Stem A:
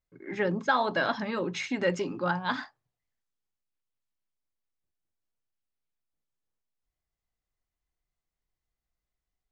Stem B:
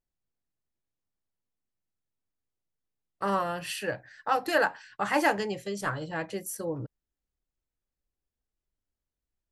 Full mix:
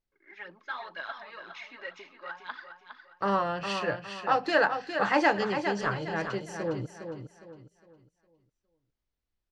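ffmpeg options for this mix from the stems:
ffmpeg -i stem1.wav -i stem2.wav -filter_complex "[0:a]highpass=1400,aemphasis=mode=reproduction:type=riaa,aphaser=in_gain=1:out_gain=1:delay=3.6:decay=0.54:speed=2:type=triangular,volume=-6dB,asplit=2[link_01][link_02];[link_02]volume=-8.5dB[link_03];[1:a]volume=1dB,asplit=2[link_04][link_05];[link_05]volume=-7.5dB[link_06];[link_03][link_06]amix=inputs=2:normalize=0,aecho=0:1:409|818|1227|1636|2045:1|0.34|0.116|0.0393|0.0134[link_07];[link_01][link_04][link_07]amix=inputs=3:normalize=0,lowpass=frequency=5700:width=0.5412,lowpass=frequency=5700:width=1.3066" out.wav

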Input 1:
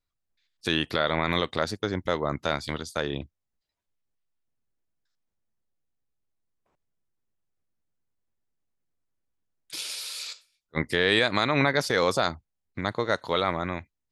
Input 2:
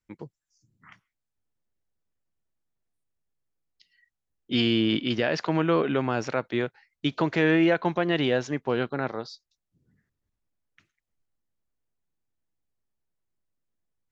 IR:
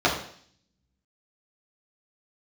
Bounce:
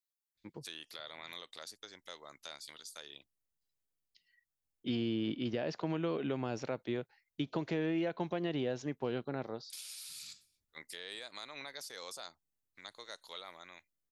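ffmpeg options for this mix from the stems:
-filter_complex "[0:a]aderivative,volume=-3dB[link_01];[1:a]adelay=350,volume=-7.5dB[link_02];[link_01][link_02]amix=inputs=2:normalize=0,acrossover=split=1000|2300[link_03][link_04][link_05];[link_03]acompressor=threshold=-31dB:ratio=4[link_06];[link_04]acompressor=threshold=-59dB:ratio=4[link_07];[link_05]acompressor=threshold=-46dB:ratio=4[link_08];[link_06][link_07][link_08]amix=inputs=3:normalize=0"

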